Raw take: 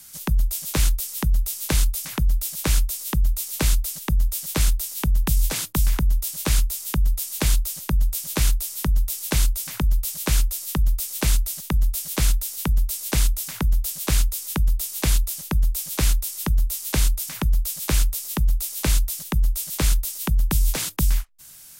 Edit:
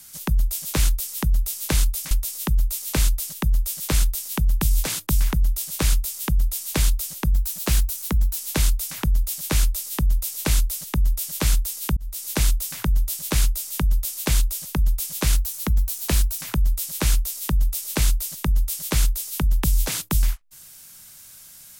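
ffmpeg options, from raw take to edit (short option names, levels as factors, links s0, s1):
-filter_complex "[0:a]asplit=7[s0][s1][s2][s3][s4][s5][s6];[s0]atrim=end=2.112[s7];[s1]atrim=start=2.768:end=7.994[s8];[s2]atrim=start=7.99:end=9.13,asetpts=PTS-STARTPTS,asetrate=48510,aresample=44100[s9];[s3]atrim=start=9.126:end=12.73,asetpts=PTS-STARTPTS,afade=t=out:st=3.6:d=0.004:c=hsin[s10];[s4]atrim=start=12.73:end=16.124,asetpts=PTS-STARTPTS,afade=t=in:d=0.31[s11];[s5]atrim=start=16.12:end=17.26,asetpts=PTS-STARTPTS,asetrate=48951,aresample=44100[s12];[s6]atrim=start=17.256[s13];[s7][s8]acrossfade=d=0.004:c1=hsin:c2=hsin[s14];[s14][s9]acrossfade=d=0.004:c1=hsin:c2=hsin[s15];[s10][s11]concat=n=2:v=0:a=1[s16];[s15][s16]acrossfade=d=0.004:c1=hsin:c2=hsin[s17];[s17][s12]acrossfade=d=0.004:c1=hsin:c2=hsin[s18];[s18][s13]acrossfade=d=0.004:c1=hsin:c2=hsin"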